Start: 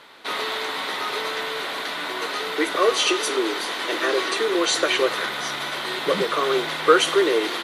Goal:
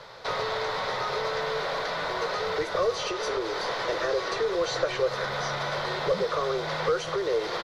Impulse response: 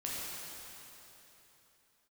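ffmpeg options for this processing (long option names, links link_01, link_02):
-filter_complex "[0:a]acrossover=split=210|3700[link_01][link_02][link_03];[link_01]acompressor=threshold=-48dB:ratio=4[link_04];[link_02]acompressor=threshold=-28dB:ratio=4[link_05];[link_03]acompressor=threshold=-45dB:ratio=4[link_06];[link_04][link_05][link_06]amix=inputs=3:normalize=0,aeval=exprs='0.376*sin(PI/2*3.55*val(0)/0.376)':channel_layout=same,firequalizer=gain_entry='entry(120,0);entry(270,-24);entry(510,-5);entry(730,-11);entry(2900,-21);entry(5100,-8);entry(8700,-25)':delay=0.05:min_phase=1"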